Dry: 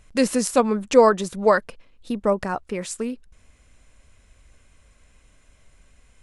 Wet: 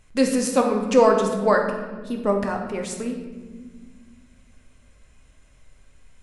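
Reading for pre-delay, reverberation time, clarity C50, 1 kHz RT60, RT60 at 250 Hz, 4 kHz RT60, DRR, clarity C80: 8 ms, 1.5 s, 5.0 dB, 1.2 s, 2.8 s, 0.90 s, 2.0 dB, 7.5 dB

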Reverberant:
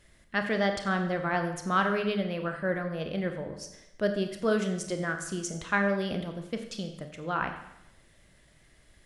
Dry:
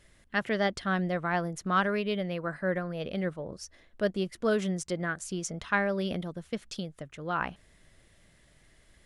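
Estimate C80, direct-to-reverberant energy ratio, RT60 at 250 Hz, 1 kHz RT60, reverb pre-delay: 10.0 dB, 5.5 dB, 0.85 s, 0.85 s, 29 ms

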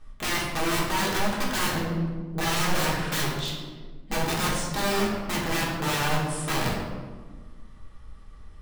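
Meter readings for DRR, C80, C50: -4.5 dB, 3.5 dB, 2.0 dB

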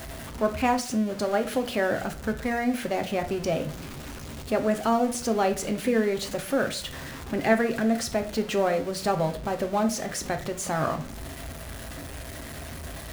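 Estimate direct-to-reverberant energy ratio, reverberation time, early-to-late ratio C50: 6.0 dB, 0.50 s, 13.5 dB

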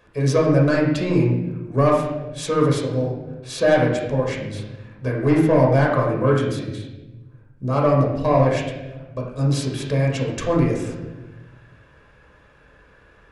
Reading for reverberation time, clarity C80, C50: 1.1 s, 5.5 dB, 3.0 dB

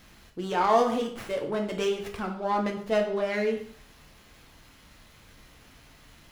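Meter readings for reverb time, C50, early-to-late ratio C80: 0.55 s, 8.5 dB, 11.5 dB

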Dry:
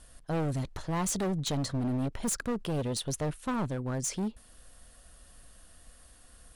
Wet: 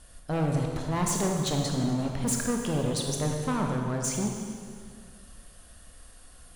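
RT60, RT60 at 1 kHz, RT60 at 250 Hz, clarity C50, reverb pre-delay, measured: 1.9 s, 1.8 s, 2.2 s, 2.5 dB, 21 ms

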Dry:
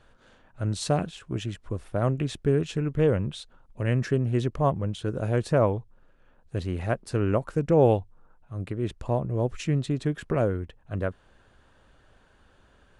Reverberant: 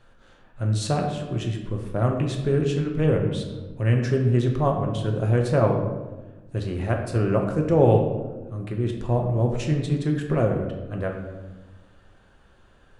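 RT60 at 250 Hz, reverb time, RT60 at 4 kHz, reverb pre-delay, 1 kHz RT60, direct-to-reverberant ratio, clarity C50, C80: 1.7 s, 1.2 s, 0.70 s, 5 ms, 1.1 s, 1.5 dB, 5.0 dB, 7.5 dB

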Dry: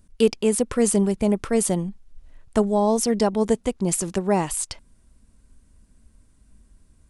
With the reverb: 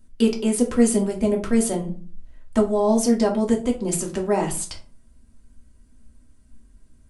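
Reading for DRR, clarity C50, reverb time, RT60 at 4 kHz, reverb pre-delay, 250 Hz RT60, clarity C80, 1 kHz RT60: -1.0 dB, 11.5 dB, 0.45 s, 0.25 s, 3 ms, 0.55 s, 17.5 dB, 0.40 s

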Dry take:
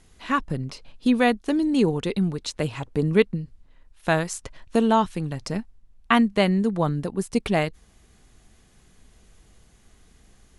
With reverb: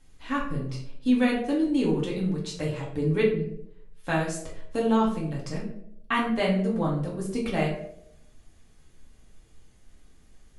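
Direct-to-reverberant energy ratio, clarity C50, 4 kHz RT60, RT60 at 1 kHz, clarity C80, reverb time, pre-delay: -4.5 dB, 5.0 dB, 0.40 s, 0.60 s, 9.0 dB, 0.75 s, 4 ms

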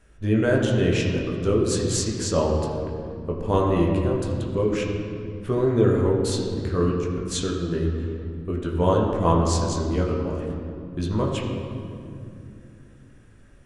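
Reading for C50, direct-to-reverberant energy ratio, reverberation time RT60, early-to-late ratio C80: 2.5 dB, -2.0 dB, 2.6 s, 4.0 dB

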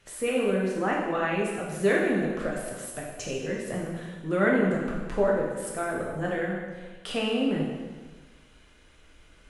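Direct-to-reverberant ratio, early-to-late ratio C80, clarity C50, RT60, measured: -3.0 dB, 3.5 dB, 1.0 dB, 1.4 s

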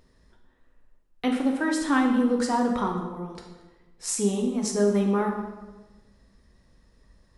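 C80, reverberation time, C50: 7.0 dB, 1.2 s, 5.0 dB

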